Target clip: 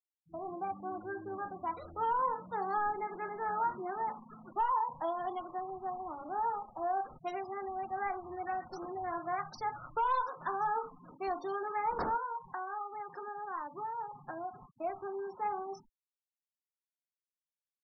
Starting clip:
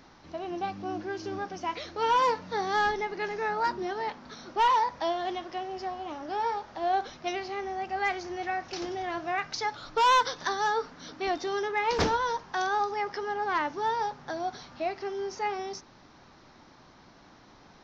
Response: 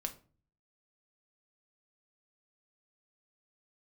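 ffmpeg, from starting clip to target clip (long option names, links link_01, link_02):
-filter_complex "[0:a]agate=range=-33dB:threshold=-43dB:ratio=3:detection=peak,asettb=1/sr,asplit=3[link_01][link_02][link_03];[link_01]atrim=end=12.174[link_04];[link_02]atrim=start=12.17:end=14.7,asetpts=PTS-STARTPTS,afade=type=in:duration=0.004:curve=qsin,afade=type=out:start_time=2.526:duration=0.004:curve=qsin,acompressor=threshold=-33dB:ratio=16[link_05];[link_03]atrim=start=14.696[link_06];[link_04][link_05]acrossfade=duration=0.004:curve1=hsin:curve2=qsin[link_07];[link_07][link_06]acrossfade=duration=0.004:curve1=qsin:curve2=hsin,highshelf=frequency=1600:width_type=q:width=1.5:gain=-10.5[link_08];[1:a]atrim=start_sample=2205,atrim=end_sample=3969[link_09];[link_08][link_09]afir=irnorm=-1:irlink=0,acrossover=split=280|1600[link_10][link_11][link_12];[link_10]acompressor=threshold=-50dB:ratio=4[link_13];[link_11]acompressor=threshold=-26dB:ratio=4[link_14];[link_12]acompressor=threshold=-47dB:ratio=4[link_15];[link_13][link_14][link_15]amix=inputs=3:normalize=0,afftfilt=real='re*gte(hypot(re,im),0.00891)':imag='im*gte(hypot(re,im),0.00891)':win_size=1024:overlap=0.75,equalizer=frequency=460:width_type=o:width=2.6:gain=-10,volume=3dB"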